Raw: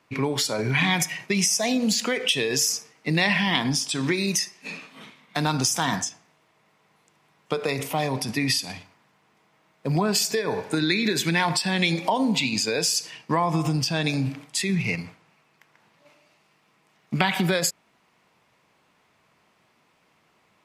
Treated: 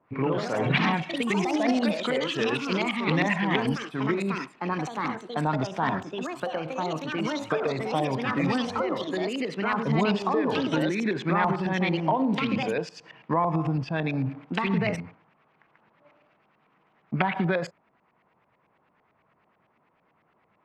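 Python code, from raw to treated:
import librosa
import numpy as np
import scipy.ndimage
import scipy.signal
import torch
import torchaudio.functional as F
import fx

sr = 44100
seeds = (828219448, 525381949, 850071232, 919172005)

y = fx.filter_lfo_lowpass(x, sr, shape='saw_up', hz=9.0, low_hz=690.0, high_hz=2400.0, q=1.2)
y = fx.echo_pitch(y, sr, ms=107, semitones=3, count=3, db_per_echo=-3.0)
y = y * librosa.db_to_amplitude(-2.5)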